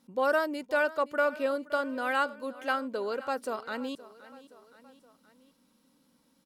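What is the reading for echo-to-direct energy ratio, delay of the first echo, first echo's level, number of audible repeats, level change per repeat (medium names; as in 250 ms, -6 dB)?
-16.5 dB, 521 ms, -18.0 dB, 3, -5.0 dB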